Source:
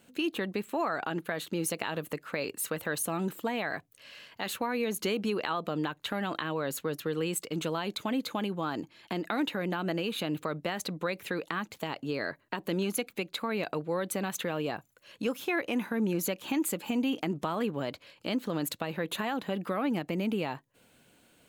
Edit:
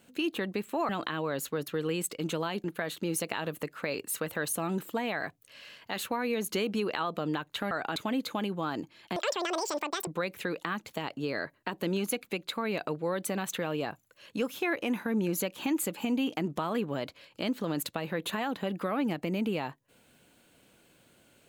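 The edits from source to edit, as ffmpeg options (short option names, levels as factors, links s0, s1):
-filter_complex "[0:a]asplit=7[s0][s1][s2][s3][s4][s5][s6];[s0]atrim=end=0.892[s7];[s1]atrim=start=6.208:end=7.962[s8];[s2]atrim=start=1.138:end=6.212[s9];[s3]atrim=start=0.888:end=1.142[s10];[s4]atrim=start=7.958:end=9.164[s11];[s5]atrim=start=9.16:end=10.93,asetpts=PTS-STARTPTS,asetrate=85554,aresample=44100[s12];[s6]atrim=start=10.926[s13];[s7][s8]acrossfade=d=0.004:c1=hsin:c2=hsin[s14];[s14][s9]acrossfade=d=0.004:c1=hsin:c2=hsin[s15];[s15][s10]acrossfade=d=0.004:c1=hsin:c2=hsin[s16];[s16][s11]acrossfade=d=0.004:c1=hsin:c2=hsin[s17];[s17][s12]acrossfade=d=0.004:c1=hsin:c2=hsin[s18];[s18][s13]acrossfade=d=0.004:c1=hsin:c2=hsin"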